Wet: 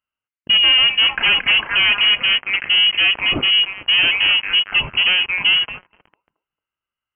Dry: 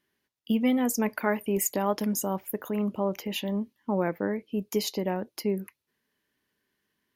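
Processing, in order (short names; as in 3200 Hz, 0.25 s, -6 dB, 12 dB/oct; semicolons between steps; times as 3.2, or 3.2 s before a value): on a send: delay with a stepping band-pass 0.225 s, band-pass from 930 Hz, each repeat 0.7 oct, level -4 dB; on the sum: harmonic-percussive split harmonic +6 dB; sample leveller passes 5; inverted band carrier 3100 Hz; gain -5 dB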